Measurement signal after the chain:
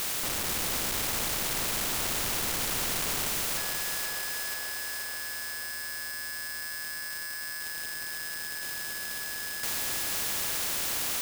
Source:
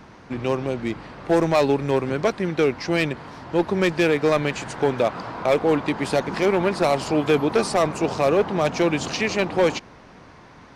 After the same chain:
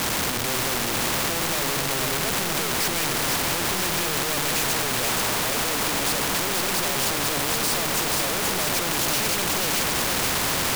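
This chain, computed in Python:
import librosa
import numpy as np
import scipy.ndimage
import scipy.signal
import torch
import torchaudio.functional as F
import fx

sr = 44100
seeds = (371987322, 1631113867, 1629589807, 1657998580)

y = np.sign(x) * np.sqrt(np.mean(np.square(x)))
y = fx.echo_split(y, sr, split_hz=470.0, low_ms=186, high_ms=483, feedback_pct=52, wet_db=-4.0)
y = fx.spectral_comp(y, sr, ratio=2.0)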